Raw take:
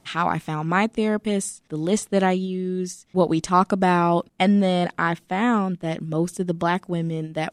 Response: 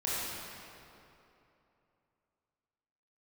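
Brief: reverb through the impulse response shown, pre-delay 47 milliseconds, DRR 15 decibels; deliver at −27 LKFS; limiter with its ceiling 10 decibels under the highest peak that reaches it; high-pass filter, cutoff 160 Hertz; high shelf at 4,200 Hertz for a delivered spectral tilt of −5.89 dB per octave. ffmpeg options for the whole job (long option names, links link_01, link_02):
-filter_complex "[0:a]highpass=160,highshelf=frequency=4200:gain=-8,alimiter=limit=-15.5dB:level=0:latency=1,asplit=2[link_01][link_02];[1:a]atrim=start_sample=2205,adelay=47[link_03];[link_02][link_03]afir=irnorm=-1:irlink=0,volume=-22.5dB[link_04];[link_01][link_04]amix=inputs=2:normalize=0"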